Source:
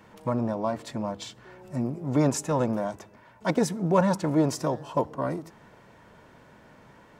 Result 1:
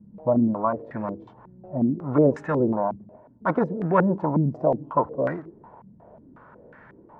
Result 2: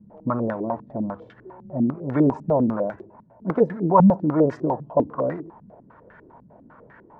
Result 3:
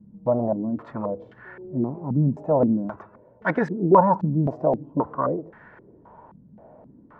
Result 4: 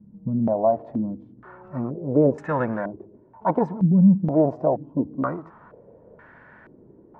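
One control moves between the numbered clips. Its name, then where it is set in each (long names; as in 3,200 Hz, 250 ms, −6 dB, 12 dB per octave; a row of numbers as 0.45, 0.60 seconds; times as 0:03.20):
low-pass on a step sequencer, speed: 5.5, 10, 3.8, 2.1 Hertz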